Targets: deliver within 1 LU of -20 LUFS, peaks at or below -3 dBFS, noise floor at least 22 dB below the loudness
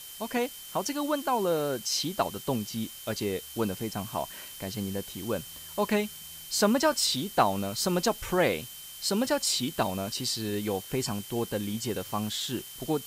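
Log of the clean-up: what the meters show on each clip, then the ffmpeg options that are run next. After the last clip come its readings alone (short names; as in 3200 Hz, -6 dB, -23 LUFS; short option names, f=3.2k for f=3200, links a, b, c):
steady tone 3100 Hz; tone level -48 dBFS; noise floor -44 dBFS; noise floor target -52 dBFS; loudness -29.5 LUFS; peak -10.5 dBFS; loudness target -20.0 LUFS
-> -af "bandreject=f=3.1k:w=30"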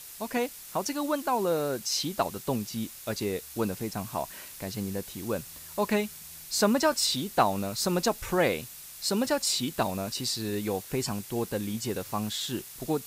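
steady tone none; noise floor -45 dBFS; noise floor target -52 dBFS
-> -af "afftdn=nr=7:nf=-45"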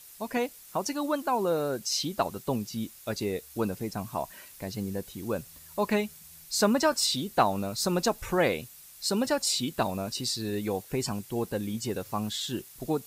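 noise floor -51 dBFS; noise floor target -52 dBFS
-> -af "afftdn=nr=6:nf=-51"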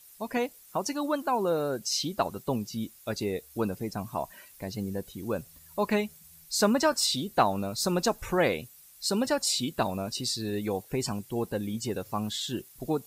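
noise floor -54 dBFS; loudness -30.0 LUFS; peak -10.5 dBFS; loudness target -20.0 LUFS
-> -af "volume=10dB,alimiter=limit=-3dB:level=0:latency=1"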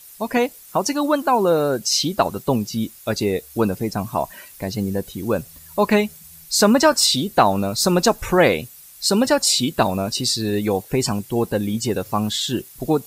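loudness -20.0 LUFS; peak -3.0 dBFS; noise floor -44 dBFS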